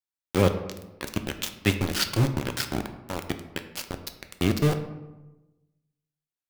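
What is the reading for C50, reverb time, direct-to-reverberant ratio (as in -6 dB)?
10.0 dB, 1.0 s, 6.5 dB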